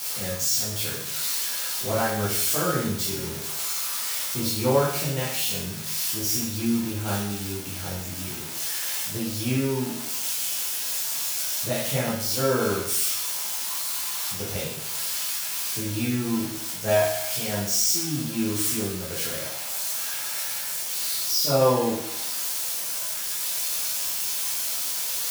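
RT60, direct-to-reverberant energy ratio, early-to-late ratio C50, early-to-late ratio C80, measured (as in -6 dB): 0.75 s, -8.0 dB, 1.5 dB, 5.5 dB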